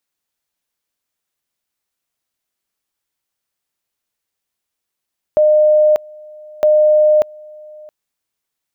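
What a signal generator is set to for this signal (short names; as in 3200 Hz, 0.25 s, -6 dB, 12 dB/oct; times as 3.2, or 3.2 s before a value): two-level tone 609 Hz -7.5 dBFS, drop 26 dB, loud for 0.59 s, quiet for 0.67 s, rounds 2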